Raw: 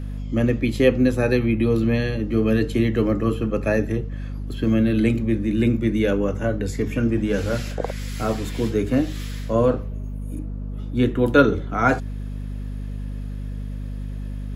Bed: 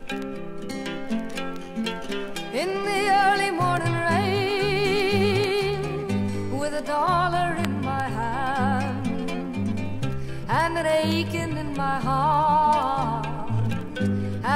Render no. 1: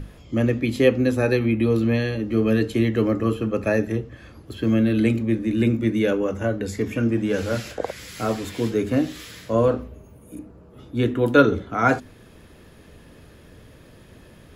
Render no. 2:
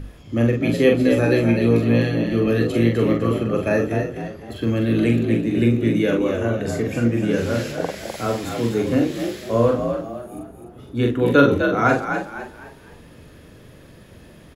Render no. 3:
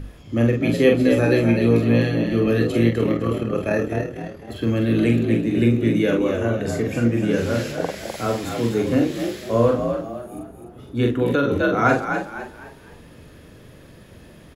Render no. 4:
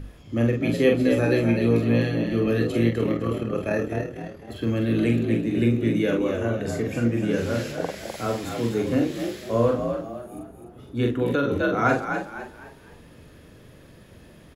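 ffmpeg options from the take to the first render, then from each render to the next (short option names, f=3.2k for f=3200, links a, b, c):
-af "bandreject=f=50:t=h:w=6,bandreject=f=100:t=h:w=6,bandreject=f=150:t=h:w=6,bandreject=f=200:t=h:w=6,bandreject=f=250:t=h:w=6"
-filter_complex "[0:a]asplit=2[a][b];[b]adelay=43,volume=-4.5dB[c];[a][c]amix=inputs=2:normalize=0,asplit=5[d][e][f][g][h];[e]adelay=253,afreqshift=53,volume=-7dB[i];[f]adelay=506,afreqshift=106,volume=-15.9dB[j];[g]adelay=759,afreqshift=159,volume=-24.7dB[k];[h]adelay=1012,afreqshift=212,volume=-33.6dB[l];[d][i][j][k][l]amix=inputs=5:normalize=0"
-filter_complex "[0:a]asettb=1/sr,asplit=3[a][b][c];[a]atrim=end=2.904[d];[b]atrim=start=2.9:end=4.49,asetpts=PTS-STARTPTS,afade=t=in:d=0.004:c=qsin,afade=t=out:st=1.586:d=0.004:c=qsin,tremolo=f=38:d=0.462[e];[c]atrim=start=4.486[f];[d][e]acrossfade=d=0.004:c1=hsin:c2=qsin[g];[g][f]acrossfade=d=0.004:c1=qsin:c2=hsin,asettb=1/sr,asplit=3[h][i][j];[h]atrim=end=11.224[k];[i]atrim=start=11.22:end=11.63,asetpts=PTS-STARTPTS,afade=t=in:d=0.004:c=qsin,afade=t=out:st=0.406:d=0.004:c=qsin,acompressor=threshold=-15dB:ratio=6:attack=3.2:release=140:knee=1:detection=peak[l];[j]atrim=start=11.626[m];[k][l]acrossfade=d=0.004:c1=hsin:c2=qsin[n];[n][m]acrossfade=d=0.004:c1=qsin:c2=hsin"
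-af "volume=-3.5dB"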